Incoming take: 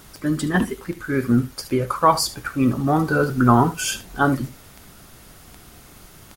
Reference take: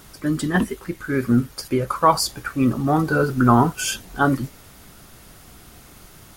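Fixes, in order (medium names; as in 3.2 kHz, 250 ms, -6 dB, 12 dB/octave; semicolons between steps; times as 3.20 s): de-click; inverse comb 73 ms -15.5 dB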